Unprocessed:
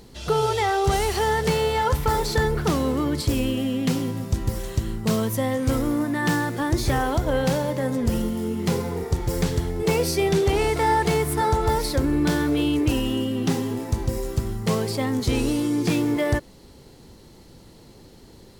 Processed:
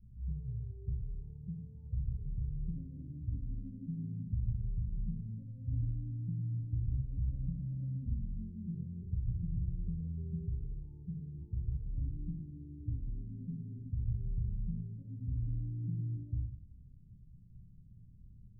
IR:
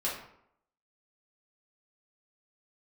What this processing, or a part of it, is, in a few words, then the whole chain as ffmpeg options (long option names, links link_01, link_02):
club heard from the street: -filter_complex "[0:a]alimiter=limit=-18.5dB:level=0:latency=1:release=124,lowpass=frequency=140:width=0.5412,lowpass=frequency=140:width=1.3066[link_01];[1:a]atrim=start_sample=2205[link_02];[link_01][link_02]afir=irnorm=-1:irlink=0,volume=-6.5dB"